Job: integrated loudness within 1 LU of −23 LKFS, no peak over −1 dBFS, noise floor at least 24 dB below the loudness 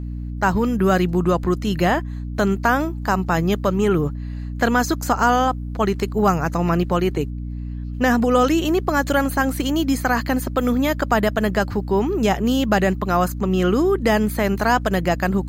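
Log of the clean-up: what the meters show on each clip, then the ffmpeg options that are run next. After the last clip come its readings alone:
mains hum 60 Hz; hum harmonics up to 300 Hz; level of the hum −26 dBFS; integrated loudness −20.0 LKFS; sample peak −4.5 dBFS; target loudness −23.0 LKFS
→ -af "bandreject=frequency=60:width_type=h:width=4,bandreject=frequency=120:width_type=h:width=4,bandreject=frequency=180:width_type=h:width=4,bandreject=frequency=240:width_type=h:width=4,bandreject=frequency=300:width_type=h:width=4"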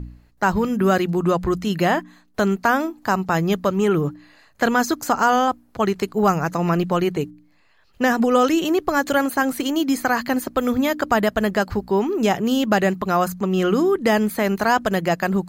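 mains hum none found; integrated loudness −20.5 LKFS; sample peak −5.0 dBFS; target loudness −23.0 LKFS
→ -af "volume=-2.5dB"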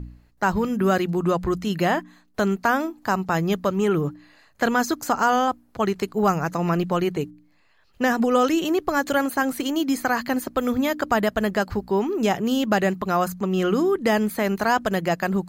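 integrated loudness −23.0 LKFS; sample peak −7.5 dBFS; background noise floor −60 dBFS

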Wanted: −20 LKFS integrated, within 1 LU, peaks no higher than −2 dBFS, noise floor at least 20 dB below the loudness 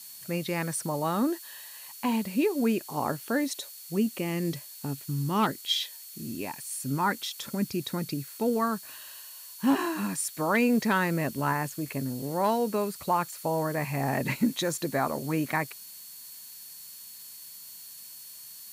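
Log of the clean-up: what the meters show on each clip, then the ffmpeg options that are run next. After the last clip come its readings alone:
interfering tone 4,400 Hz; level of the tone −53 dBFS; background noise floor −46 dBFS; target noise floor −50 dBFS; integrated loudness −29.5 LKFS; sample peak −14.0 dBFS; target loudness −20.0 LKFS
→ -af "bandreject=frequency=4400:width=30"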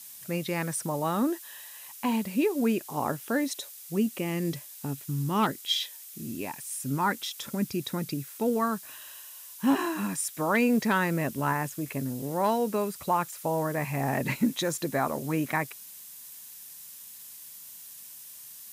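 interfering tone none found; background noise floor −46 dBFS; target noise floor −50 dBFS
→ -af "afftdn=noise_reduction=6:noise_floor=-46"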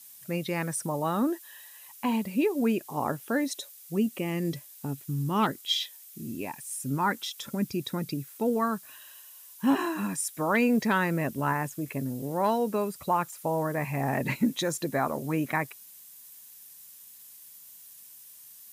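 background noise floor −50 dBFS; integrated loudness −29.5 LKFS; sample peak −14.0 dBFS; target loudness −20.0 LKFS
→ -af "volume=9.5dB"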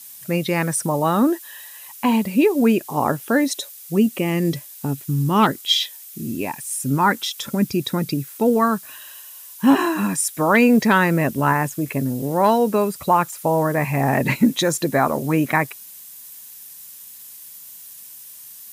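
integrated loudness −20.0 LKFS; sample peak −4.5 dBFS; background noise floor −41 dBFS

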